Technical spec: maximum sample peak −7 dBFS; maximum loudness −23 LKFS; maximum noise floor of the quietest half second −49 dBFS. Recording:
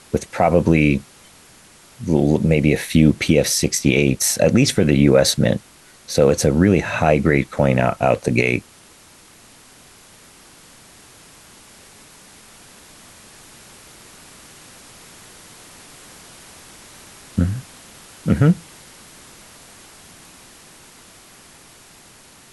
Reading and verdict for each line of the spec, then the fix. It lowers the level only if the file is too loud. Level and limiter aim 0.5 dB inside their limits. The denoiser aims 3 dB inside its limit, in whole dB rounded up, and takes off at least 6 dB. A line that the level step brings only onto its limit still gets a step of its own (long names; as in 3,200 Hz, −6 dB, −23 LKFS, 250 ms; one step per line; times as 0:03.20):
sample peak −3.0 dBFS: out of spec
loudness −17.5 LKFS: out of spec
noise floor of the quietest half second −48 dBFS: out of spec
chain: level −6 dB